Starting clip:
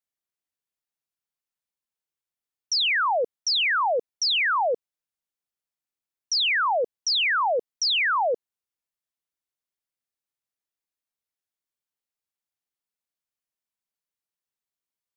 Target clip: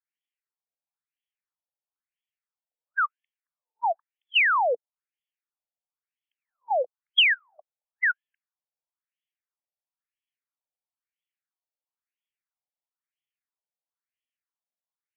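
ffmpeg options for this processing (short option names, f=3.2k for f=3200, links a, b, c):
-af "lowpass=f=3.8k:t=q:w=3,afftfilt=real='re*between(b*sr/1024,620*pow(2500/620,0.5+0.5*sin(2*PI*1*pts/sr))/1.41,620*pow(2500/620,0.5+0.5*sin(2*PI*1*pts/sr))*1.41)':imag='im*between(b*sr/1024,620*pow(2500/620,0.5+0.5*sin(2*PI*1*pts/sr))/1.41,620*pow(2500/620,0.5+0.5*sin(2*PI*1*pts/sr))*1.41)':win_size=1024:overlap=0.75"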